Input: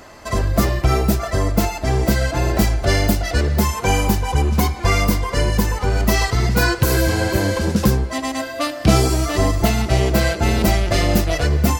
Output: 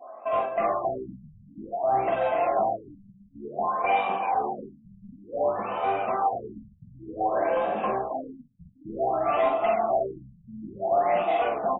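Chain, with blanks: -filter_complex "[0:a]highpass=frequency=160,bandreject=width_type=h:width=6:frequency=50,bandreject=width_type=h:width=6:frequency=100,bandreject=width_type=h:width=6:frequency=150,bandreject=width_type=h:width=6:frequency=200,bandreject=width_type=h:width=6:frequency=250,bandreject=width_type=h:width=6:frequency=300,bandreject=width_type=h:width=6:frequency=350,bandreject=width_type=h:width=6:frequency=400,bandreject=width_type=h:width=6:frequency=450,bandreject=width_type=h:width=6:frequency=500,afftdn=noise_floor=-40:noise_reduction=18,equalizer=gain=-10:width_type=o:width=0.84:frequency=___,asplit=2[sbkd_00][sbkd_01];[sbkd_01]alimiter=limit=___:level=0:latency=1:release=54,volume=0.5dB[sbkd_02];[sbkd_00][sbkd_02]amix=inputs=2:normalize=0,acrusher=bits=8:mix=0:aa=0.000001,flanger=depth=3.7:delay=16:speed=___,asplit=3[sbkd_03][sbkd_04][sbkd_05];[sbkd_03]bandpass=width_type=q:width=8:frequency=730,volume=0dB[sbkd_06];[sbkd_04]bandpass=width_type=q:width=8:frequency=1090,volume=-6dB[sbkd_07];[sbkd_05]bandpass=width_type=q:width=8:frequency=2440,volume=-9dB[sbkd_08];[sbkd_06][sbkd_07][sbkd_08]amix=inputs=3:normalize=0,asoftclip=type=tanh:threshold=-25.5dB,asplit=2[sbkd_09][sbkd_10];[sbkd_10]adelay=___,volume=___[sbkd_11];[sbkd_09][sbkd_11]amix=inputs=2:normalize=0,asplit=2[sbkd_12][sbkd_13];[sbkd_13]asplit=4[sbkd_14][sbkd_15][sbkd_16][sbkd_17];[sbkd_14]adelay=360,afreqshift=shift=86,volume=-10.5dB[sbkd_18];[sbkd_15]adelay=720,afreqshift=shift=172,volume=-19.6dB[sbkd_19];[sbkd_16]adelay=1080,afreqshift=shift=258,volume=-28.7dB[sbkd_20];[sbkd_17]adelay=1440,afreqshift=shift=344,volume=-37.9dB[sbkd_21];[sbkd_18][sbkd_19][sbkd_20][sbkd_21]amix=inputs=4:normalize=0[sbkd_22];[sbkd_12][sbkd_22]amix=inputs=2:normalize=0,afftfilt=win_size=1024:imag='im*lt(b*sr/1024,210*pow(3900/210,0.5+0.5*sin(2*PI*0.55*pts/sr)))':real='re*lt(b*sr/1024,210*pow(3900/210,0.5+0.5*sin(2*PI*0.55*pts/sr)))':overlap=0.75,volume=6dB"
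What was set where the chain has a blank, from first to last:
5000, -13dB, 0.97, 46, -4dB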